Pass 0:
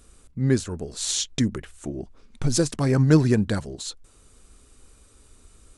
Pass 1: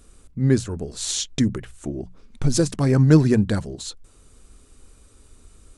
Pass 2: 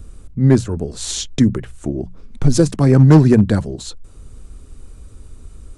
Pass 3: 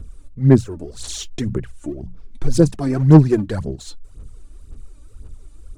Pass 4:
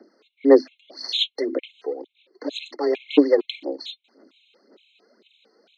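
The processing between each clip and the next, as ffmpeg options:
ffmpeg -i in.wav -af "lowshelf=frequency=400:gain=4,bandreject=frequency=60:width_type=h:width=6,bandreject=frequency=120:width_type=h:width=6,bandreject=frequency=180:width_type=h:width=6" out.wav
ffmpeg -i in.wav -filter_complex "[0:a]tiltshelf=frequency=1300:gain=3,acrossover=split=170|630|4000[link_01][link_02][link_03][link_04];[link_01]acompressor=mode=upward:threshold=-30dB:ratio=2.5[link_05];[link_05][link_02][link_03][link_04]amix=inputs=4:normalize=0,asoftclip=type=hard:threshold=-6.5dB,volume=4dB" out.wav
ffmpeg -i in.wav -af "aphaser=in_gain=1:out_gain=1:delay=3.5:decay=0.68:speed=1.9:type=sinusoidal,volume=-8.5dB" out.wav
ffmpeg -i in.wav -af "highpass=frequency=150:width_type=q:width=0.5412,highpass=frequency=150:width_type=q:width=1.307,lowpass=frequency=3600:width_type=q:width=0.5176,lowpass=frequency=3600:width_type=q:width=0.7071,lowpass=frequency=3600:width_type=q:width=1.932,afreqshift=140,aexciter=amount=5.1:drive=7.5:freq=2400,afftfilt=real='re*gt(sin(2*PI*2.2*pts/sr)*(1-2*mod(floor(b*sr/1024/2100),2)),0)':imag='im*gt(sin(2*PI*2.2*pts/sr)*(1-2*mod(floor(b*sr/1024/2100),2)),0)':win_size=1024:overlap=0.75" out.wav

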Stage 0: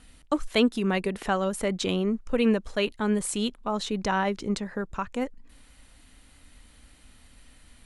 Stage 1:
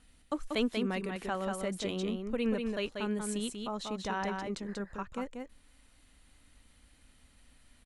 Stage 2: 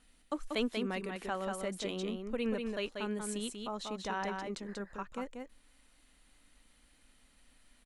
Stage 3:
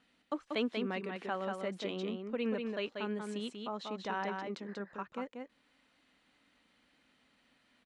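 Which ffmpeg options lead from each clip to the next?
ffmpeg -i in.wav -af "aecho=1:1:188:0.596,volume=-9dB" out.wav
ffmpeg -i in.wav -af "equalizer=frequency=83:width_type=o:width=1.4:gain=-12,volume=-1.5dB" out.wav
ffmpeg -i in.wav -af "highpass=140,lowpass=4000" out.wav

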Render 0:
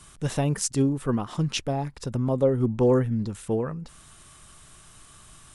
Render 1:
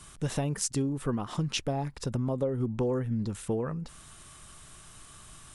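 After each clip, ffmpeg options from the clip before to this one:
ffmpeg -i in.wav -af "acompressor=threshold=-26dB:ratio=6" out.wav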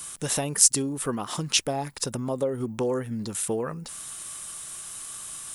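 ffmpeg -i in.wav -af "aemphasis=mode=production:type=bsi,volume=5dB" out.wav

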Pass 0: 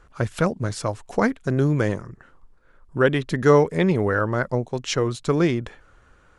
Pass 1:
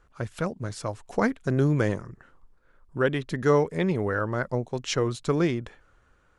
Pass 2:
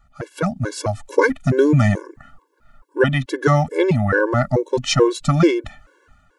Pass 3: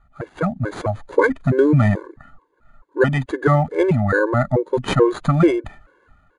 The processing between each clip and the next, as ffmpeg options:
ffmpeg -i in.wav -af "dynaudnorm=framelen=200:gausssize=11:maxgain=11.5dB,volume=-8dB" out.wav
ffmpeg -i in.wav -af "dynaudnorm=framelen=170:gausssize=5:maxgain=7dB,afftfilt=real='re*gt(sin(2*PI*2.3*pts/sr)*(1-2*mod(floor(b*sr/1024/290),2)),0)':imag='im*gt(sin(2*PI*2.3*pts/sr)*(1-2*mod(floor(b*sr/1024/290),2)),0)':win_size=1024:overlap=0.75,volume=6dB" out.wav
ffmpeg -i in.wav -filter_complex "[0:a]acrossover=split=2800[link_01][link_02];[link_02]acrusher=samples=16:mix=1:aa=0.000001[link_03];[link_01][link_03]amix=inputs=2:normalize=0,aresample=22050,aresample=44100" out.wav

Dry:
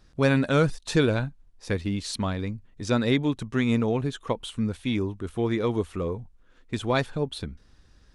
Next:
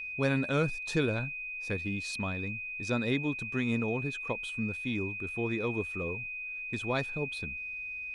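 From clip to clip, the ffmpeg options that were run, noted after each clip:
ffmpeg -i in.wav -af "aeval=exprs='val(0)+0.0355*sin(2*PI*2500*n/s)':channel_layout=same,volume=-7.5dB" out.wav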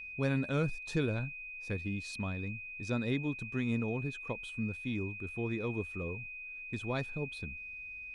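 ffmpeg -i in.wav -af "lowshelf=frequency=270:gain=6.5,volume=-6dB" out.wav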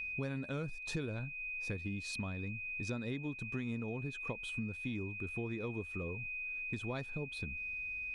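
ffmpeg -i in.wav -af "acompressor=threshold=-42dB:ratio=4,volume=4.5dB" out.wav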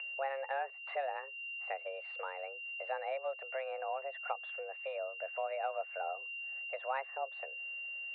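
ffmpeg -i in.wav -af "highpass=frequency=290:width_type=q:width=0.5412,highpass=frequency=290:width_type=q:width=1.307,lowpass=frequency=2200:width_type=q:width=0.5176,lowpass=frequency=2200:width_type=q:width=0.7071,lowpass=frequency=2200:width_type=q:width=1.932,afreqshift=270,volume=6dB" out.wav

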